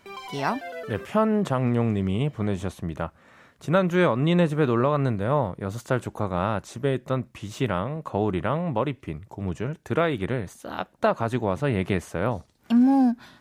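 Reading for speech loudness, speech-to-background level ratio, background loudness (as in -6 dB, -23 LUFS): -25.5 LUFS, 12.5 dB, -38.0 LUFS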